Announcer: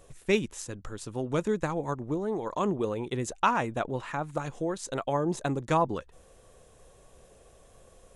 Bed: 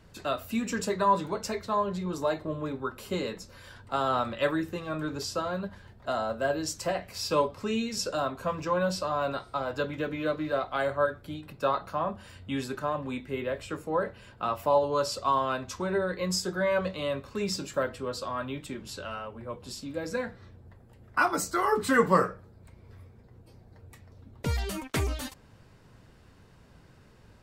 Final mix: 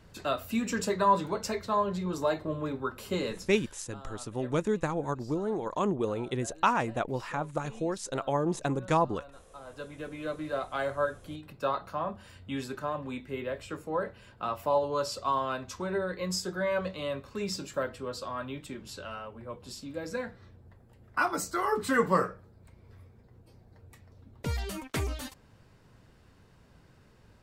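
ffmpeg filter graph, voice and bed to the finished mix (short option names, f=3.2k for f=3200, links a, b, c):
-filter_complex "[0:a]adelay=3200,volume=-0.5dB[a];[1:a]volume=18dB,afade=t=out:st=3.54:d=0.23:silence=0.0891251,afade=t=in:st=9.45:d=1.24:silence=0.125893[b];[a][b]amix=inputs=2:normalize=0"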